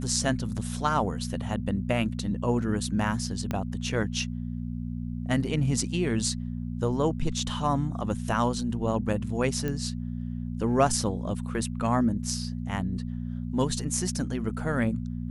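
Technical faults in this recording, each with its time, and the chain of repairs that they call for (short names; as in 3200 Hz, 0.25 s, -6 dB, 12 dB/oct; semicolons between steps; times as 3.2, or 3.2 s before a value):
hum 60 Hz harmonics 4 -33 dBFS
3.51 pop -16 dBFS
9.68 pop -18 dBFS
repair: de-click; de-hum 60 Hz, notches 4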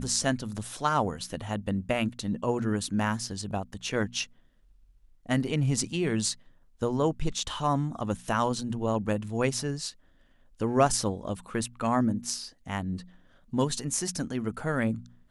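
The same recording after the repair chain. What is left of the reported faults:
3.51 pop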